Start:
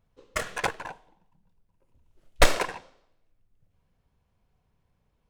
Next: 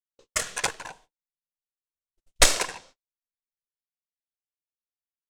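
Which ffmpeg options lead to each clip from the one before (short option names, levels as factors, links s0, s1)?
-af "agate=range=0.00562:threshold=0.00251:ratio=16:detection=peak,equalizer=f=7500:t=o:w=2.2:g=15,volume=0.668"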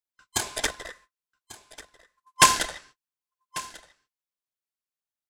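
-af "afftfilt=real='real(if(lt(b,960),b+48*(1-2*mod(floor(b/48),2)),b),0)':imag='imag(if(lt(b,960),b+48*(1-2*mod(floor(b/48),2)),b),0)':win_size=2048:overlap=0.75,aecho=1:1:1143:0.126"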